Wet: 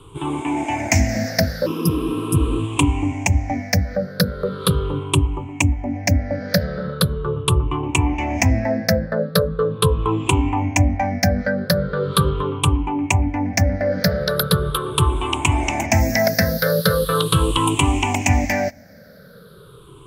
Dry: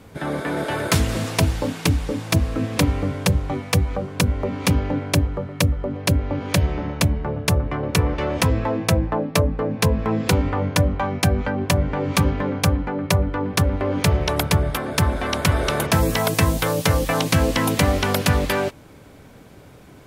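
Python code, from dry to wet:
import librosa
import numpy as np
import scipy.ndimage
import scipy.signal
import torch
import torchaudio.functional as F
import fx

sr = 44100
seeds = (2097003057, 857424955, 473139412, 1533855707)

y = fx.spec_ripple(x, sr, per_octave=0.65, drift_hz=-0.4, depth_db=24)
y = fx.spec_repair(y, sr, seeds[0], start_s=1.69, length_s=0.86, low_hz=200.0, high_hz=4900.0, source='after')
y = y * librosa.db_to_amplitude(-4.0)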